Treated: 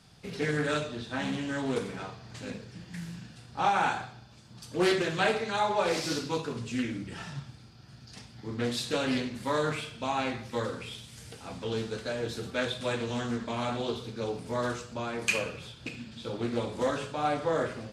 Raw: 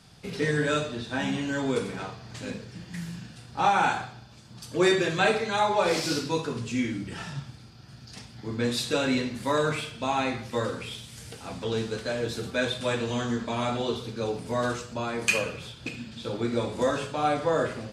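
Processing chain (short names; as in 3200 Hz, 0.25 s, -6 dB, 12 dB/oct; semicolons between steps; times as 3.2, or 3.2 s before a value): Doppler distortion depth 0.26 ms; gain -3.5 dB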